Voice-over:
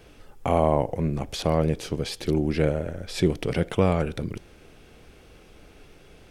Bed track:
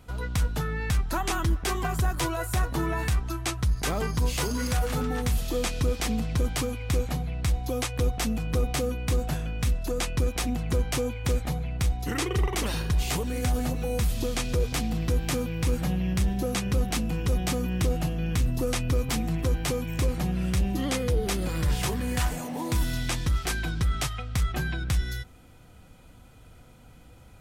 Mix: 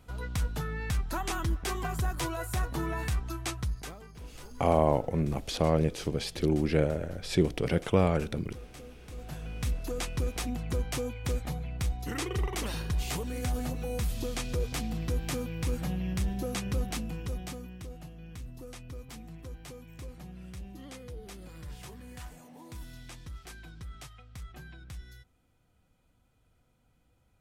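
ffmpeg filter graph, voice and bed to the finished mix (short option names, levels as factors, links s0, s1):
-filter_complex "[0:a]adelay=4150,volume=0.708[s0];[1:a]volume=3.35,afade=t=out:st=3.55:d=0.43:silence=0.158489,afade=t=in:st=9.1:d=0.56:silence=0.16788,afade=t=out:st=16.77:d=1.01:silence=0.237137[s1];[s0][s1]amix=inputs=2:normalize=0"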